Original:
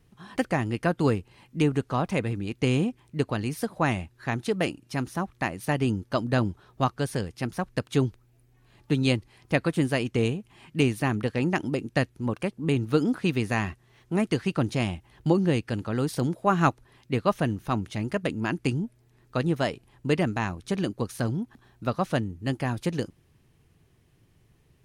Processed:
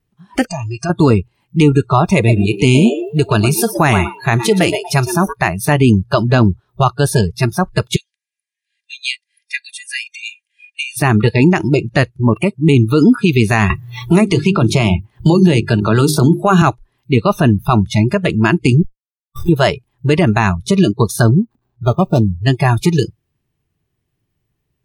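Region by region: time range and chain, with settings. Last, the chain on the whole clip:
0.47–0.90 s: steep low-pass 8.3 kHz + tone controls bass -3 dB, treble +9 dB + compression 4:1, threshold -34 dBFS
2.16–5.33 s: treble shelf 8.2 kHz +6.5 dB + frequency-shifting echo 119 ms, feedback 39%, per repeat +100 Hz, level -10 dB
7.96–10.97 s: comb 2.5 ms, depth 49% + compression 2:1, threshold -35 dBFS + brick-wall FIR band-pass 1.6–11 kHz
13.70–16.62 s: hum notches 50/100/150/200/250/300/350/400 Hz + three bands compressed up and down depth 70%
18.82–19.49 s: peaking EQ 65 Hz -9 dB 2.4 oct + Schmitt trigger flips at -26.5 dBFS + detune thickener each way 43 cents
21.26–22.44 s: median filter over 25 samples + dynamic bell 1.8 kHz, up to -8 dB, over -47 dBFS, Q 0.95
whole clip: spectral noise reduction 27 dB; band-stop 500 Hz, Q 12; loudness maximiser +19.5 dB; trim -1 dB

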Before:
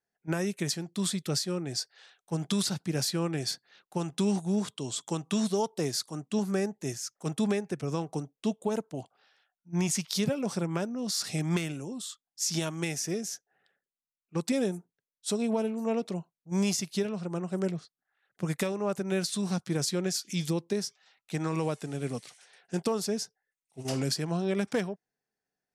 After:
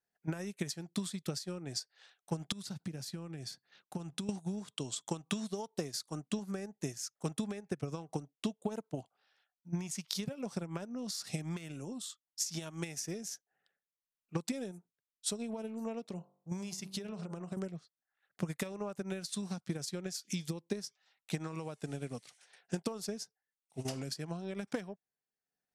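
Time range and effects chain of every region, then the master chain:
2.52–4.29 s: peaking EQ 120 Hz +5.5 dB 2.4 oct + compression 4:1, threshold -38 dBFS
16.09–17.57 s: de-hum 47.96 Hz, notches 30 + compression, threshold -33 dBFS
whole clip: peaking EQ 370 Hz -2.5 dB 0.68 oct; compression 6:1, threshold -34 dBFS; transient shaper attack +7 dB, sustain -6 dB; trim -3.5 dB

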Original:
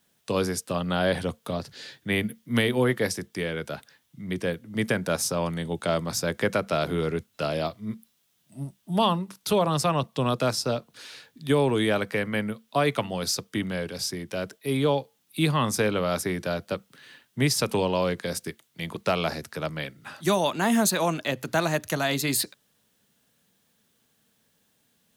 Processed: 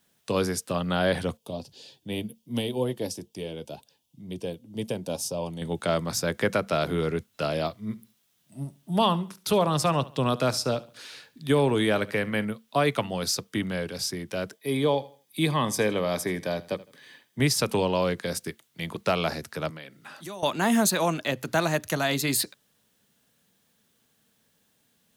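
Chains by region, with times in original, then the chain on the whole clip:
1.37–5.62 s: high-order bell 1.6 kHz -15.5 dB 1.1 oct + band-stop 4 kHz, Q 22 + flange 2 Hz, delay 1.4 ms, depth 2.7 ms, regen +68%
7.87–12.45 s: de-esser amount 25% + feedback delay 70 ms, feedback 33%, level -19 dB
14.54–17.40 s: comb of notches 1.4 kHz + feedback delay 80 ms, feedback 30%, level -19 dB
19.70–20.43 s: high-pass 170 Hz + compression 3:1, threshold -40 dBFS
whole clip: none

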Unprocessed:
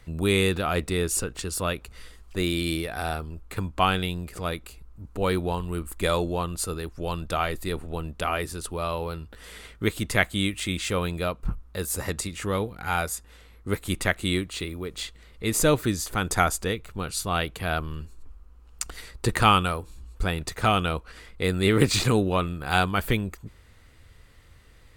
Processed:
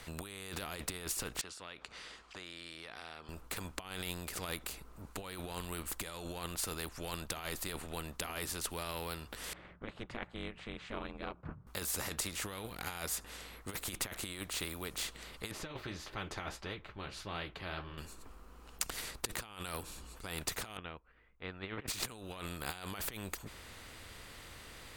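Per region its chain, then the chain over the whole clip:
1.41–3.29 s: high-pass 960 Hz 6 dB/octave + compression 4:1, threshold -46 dBFS + distance through air 120 m
9.53–11.67 s: low-pass 1.4 kHz + ring modulator 120 Hz + upward expansion, over -40 dBFS
15.51–17.98 s: flange 1.6 Hz, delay 6.4 ms, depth 9 ms, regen -52% + distance through air 300 m + comb of notches 240 Hz
20.77–21.88 s: low-pass 2.6 kHz 24 dB/octave + upward expansion 2.5:1, over -35 dBFS
whole clip: compressor with a negative ratio -29 dBFS, ratio -0.5; spectrum-flattening compressor 2:1; trim -4.5 dB

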